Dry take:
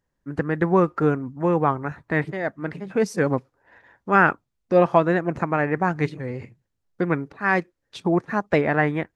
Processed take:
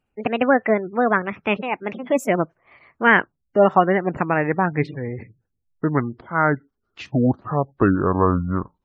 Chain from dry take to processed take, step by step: speed glide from 152% -> 55%; spectral gate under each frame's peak -30 dB strong; gain +2 dB

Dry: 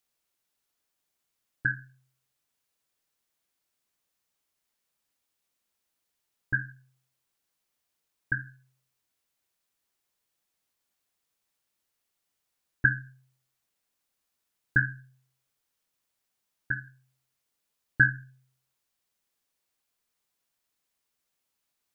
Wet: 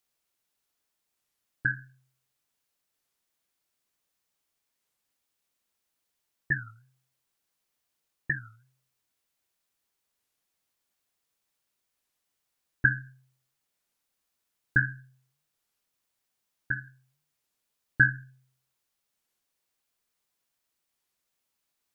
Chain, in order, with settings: record warp 33 1/3 rpm, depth 250 cents

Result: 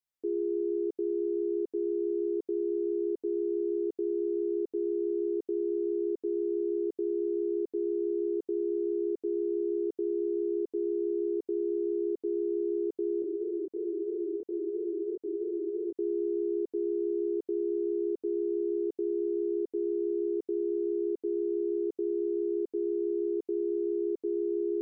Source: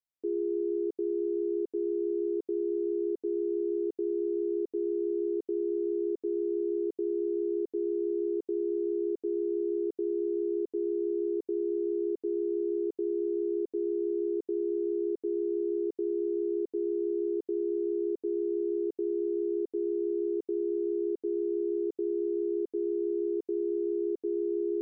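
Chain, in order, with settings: 13.22–15.95 chorus 3 Hz, delay 20 ms, depth 7.4 ms

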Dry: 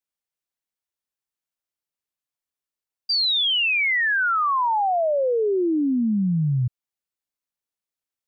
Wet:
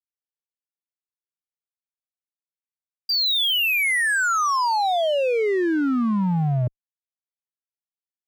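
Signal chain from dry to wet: backlash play -49 dBFS; added harmonics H 5 -13 dB, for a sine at -18 dBFS

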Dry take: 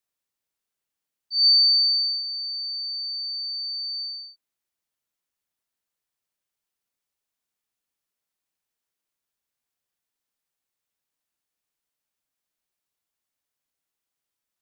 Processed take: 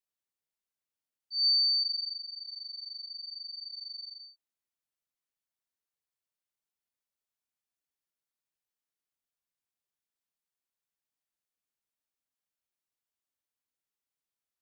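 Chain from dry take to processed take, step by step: 1.83–4.22 tape flanging out of phase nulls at 1.6 Hz, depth 1.6 ms; gain -8.5 dB

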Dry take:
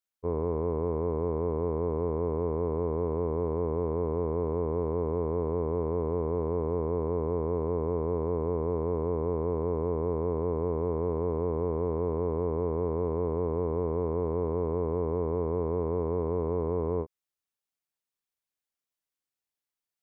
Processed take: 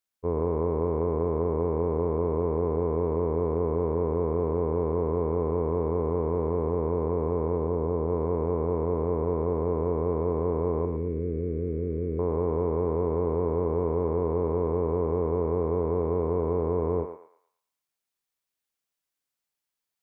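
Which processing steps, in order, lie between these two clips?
7.56–8.09 high shelf 2000 Hz -8 dB; 10.85–12.19 Butterworth band-stop 890 Hz, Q 0.52; thinning echo 0.113 s, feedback 45%, high-pass 780 Hz, level -4.5 dB; gain +2.5 dB

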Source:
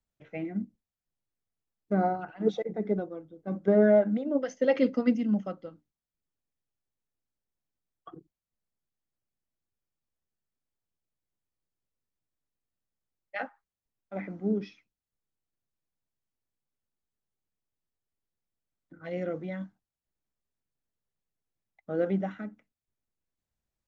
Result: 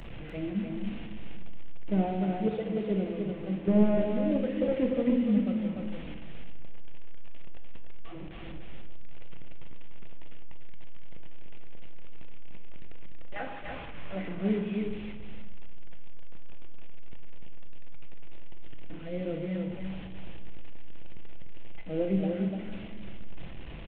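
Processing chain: delta modulation 16 kbps, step -35.5 dBFS; bell 1300 Hz -11.5 dB 1.8 oct, from 13.36 s -4 dB, from 14.6 s -13 dB; echo 0.296 s -4.5 dB; shoebox room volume 620 m³, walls mixed, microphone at 0.74 m

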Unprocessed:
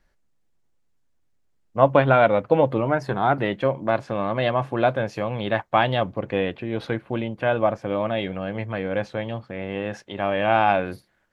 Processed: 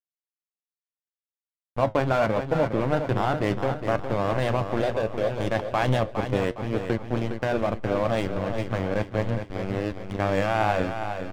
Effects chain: 4.8–5.4 ten-band EQ 125 Hz -5 dB, 250 Hz -6 dB, 500 Hz +8 dB, 1000 Hz -10 dB, 2000 Hz -6 dB, 4000 Hz +7 dB; in parallel at +2 dB: negative-ratio compressor -24 dBFS, ratio -1; on the sum: backlash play -13.5 dBFS; flange 0.72 Hz, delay 5.3 ms, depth 5.3 ms, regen +73%; on a send: feedback echo 0.411 s, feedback 43%, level -8 dB; on the sum: gain -2.5 dB

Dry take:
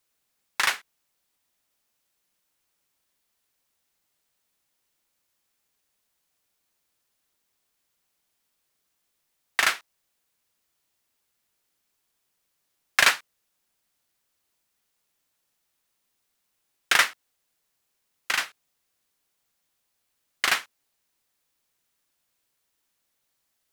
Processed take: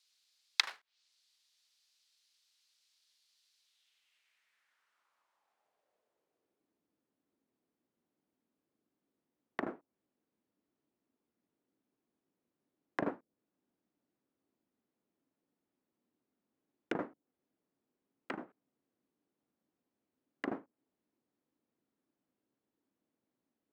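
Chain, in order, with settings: treble ducked by the level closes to 650 Hz, closed at -24 dBFS; short-mantissa float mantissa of 2-bit; band-pass sweep 4300 Hz -> 270 Hz, 3.57–6.8; gain +10 dB

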